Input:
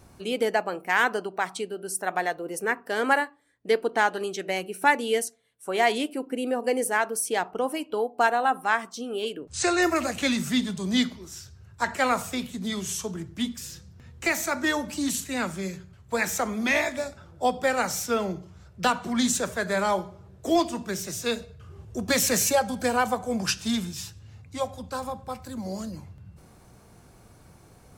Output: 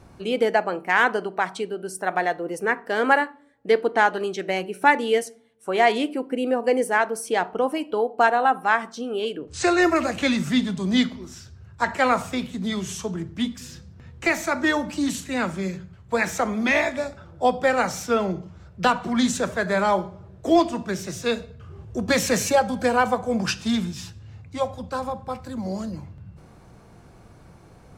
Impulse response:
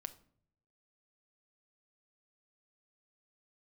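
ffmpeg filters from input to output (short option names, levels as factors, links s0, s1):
-filter_complex "[0:a]aemphasis=mode=reproduction:type=50kf,asplit=2[s0][s1];[1:a]atrim=start_sample=2205[s2];[s1][s2]afir=irnorm=-1:irlink=0,volume=1[s3];[s0][s3]amix=inputs=2:normalize=0"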